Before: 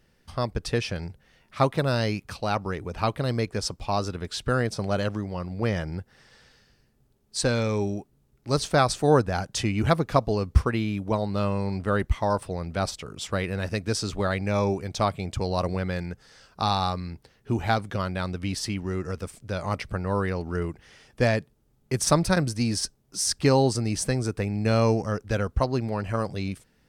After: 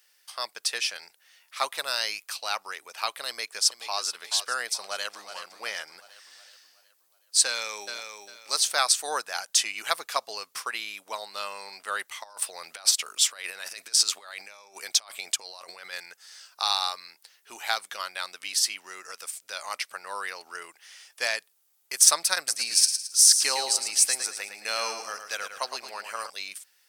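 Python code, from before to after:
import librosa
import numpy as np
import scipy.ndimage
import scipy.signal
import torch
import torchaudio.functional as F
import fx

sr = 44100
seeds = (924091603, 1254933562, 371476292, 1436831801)

y = fx.echo_throw(x, sr, start_s=3.28, length_s=0.73, ms=430, feedback_pct=45, wet_db=-10.5)
y = fx.echo_throw(y, sr, start_s=4.76, length_s=0.59, ms=370, feedback_pct=50, wet_db=-9.5)
y = fx.echo_throw(y, sr, start_s=7.47, length_s=0.49, ms=400, feedback_pct=25, wet_db=-6.5)
y = fx.over_compress(y, sr, threshold_db=-31.0, ratio=-0.5, at=(12.22, 15.92), fade=0.02)
y = fx.echo_feedback(y, sr, ms=110, feedback_pct=37, wet_db=-8, at=(22.37, 26.3))
y = scipy.signal.sosfilt(scipy.signal.butter(2, 750.0, 'highpass', fs=sr, output='sos'), y)
y = fx.tilt_eq(y, sr, slope=4.5)
y = y * librosa.db_to_amplitude(-2.5)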